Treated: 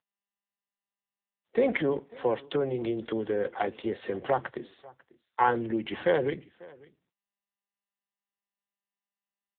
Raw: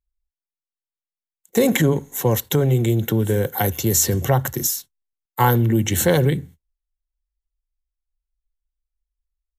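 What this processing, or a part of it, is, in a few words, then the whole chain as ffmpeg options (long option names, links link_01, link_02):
satellite phone: -af "highpass=360,lowpass=3300,aecho=1:1:544:0.0708,volume=-4dB" -ar 8000 -c:a libopencore_amrnb -b:a 6700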